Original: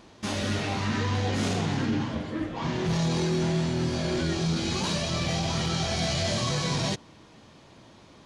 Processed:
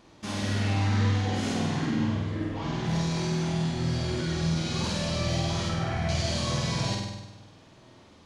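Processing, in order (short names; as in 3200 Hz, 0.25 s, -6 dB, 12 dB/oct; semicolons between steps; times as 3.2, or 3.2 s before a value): 5.69–6.09 resonant high shelf 2900 Hz -13.5 dB, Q 1.5; flutter echo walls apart 8.5 m, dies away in 1 s; on a send at -15 dB: reverb RT60 0.65 s, pre-delay 76 ms; on the sum: gain -5 dB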